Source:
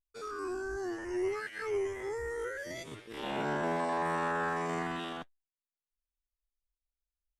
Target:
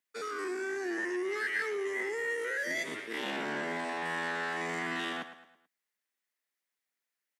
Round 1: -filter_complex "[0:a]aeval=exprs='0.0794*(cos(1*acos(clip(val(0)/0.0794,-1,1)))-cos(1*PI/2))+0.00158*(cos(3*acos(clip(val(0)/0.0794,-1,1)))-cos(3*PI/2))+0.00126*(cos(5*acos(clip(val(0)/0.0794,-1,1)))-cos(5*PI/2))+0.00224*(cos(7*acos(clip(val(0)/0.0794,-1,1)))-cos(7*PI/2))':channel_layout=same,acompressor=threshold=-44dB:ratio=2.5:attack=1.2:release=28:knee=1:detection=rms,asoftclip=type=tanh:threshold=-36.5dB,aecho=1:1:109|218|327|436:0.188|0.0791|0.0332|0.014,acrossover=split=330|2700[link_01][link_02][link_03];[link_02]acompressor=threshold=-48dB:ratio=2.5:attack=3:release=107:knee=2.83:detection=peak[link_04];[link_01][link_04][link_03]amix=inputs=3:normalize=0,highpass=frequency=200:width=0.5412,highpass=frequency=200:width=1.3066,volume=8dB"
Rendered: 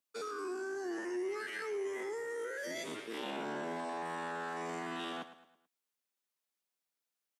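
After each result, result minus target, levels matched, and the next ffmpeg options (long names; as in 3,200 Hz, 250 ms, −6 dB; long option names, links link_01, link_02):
downward compressor: peak gain reduction +7 dB; 2,000 Hz band −4.5 dB
-filter_complex "[0:a]aeval=exprs='0.0794*(cos(1*acos(clip(val(0)/0.0794,-1,1)))-cos(1*PI/2))+0.00158*(cos(3*acos(clip(val(0)/0.0794,-1,1)))-cos(3*PI/2))+0.00126*(cos(5*acos(clip(val(0)/0.0794,-1,1)))-cos(5*PI/2))+0.00224*(cos(7*acos(clip(val(0)/0.0794,-1,1)))-cos(7*PI/2))':channel_layout=same,acompressor=threshold=-32.5dB:ratio=2.5:attack=1.2:release=28:knee=1:detection=rms,asoftclip=type=tanh:threshold=-36.5dB,aecho=1:1:109|218|327|436:0.188|0.0791|0.0332|0.014,acrossover=split=330|2700[link_01][link_02][link_03];[link_02]acompressor=threshold=-48dB:ratio=2.5:attack=3:release=107:knee=2.83:detection=peak[link_04];[link_01][link_04][link_03]amix=inputs=3:normalize=0,highpass=frequency=200:width=0.5412,highpass=frequency=200:width=1.3066,volume=8dB"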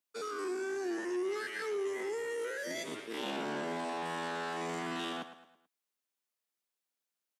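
2,000 Hz band −5.0 dB
-filter_complex "[0:a]aeval=exprs='0.0794*(cos(1*acos(clip(val(0)/0.0794,-1,1)))-cos(1*PI/2))+0.00158*(cos(3*acos(clip(val(0)/0.0794,-1,1)))-cos(3*PI/2))+0.00126*(cos(5*acos(clip(val(0)/0.0794,-1,1)))-cos(5*PI/2))+0.00224*(cos(7*acos(clip(val(0)/0.0794,-1,1)))-cos(7*PI/2))':channel_layout=same,acompressor=threshold=-32.5dB:ratio=2.5:attack=1.2:release=28:knee=1:detection=rms,asoftclip=type=tanh:threshold=-36.5dB,aecho=1:1:109|218|327|436:0.188|0.0791|0.0332|0.014,acrossover=split=330|2700[link_01][link_02][link_03];[link_02]acompressor=threshold=-48dB:ratio=2.5:attack=3:release=107:knee=2.83:detection=peak[link_04];[link_01][link_04][link_03]amix=inputs=3:normalize=0,highpass=frequency=200:width=0.5412,highpass=frequency=200:width=1.3066,equalizer=frequency=1900:width=2.6:gain=11,volume=8dB"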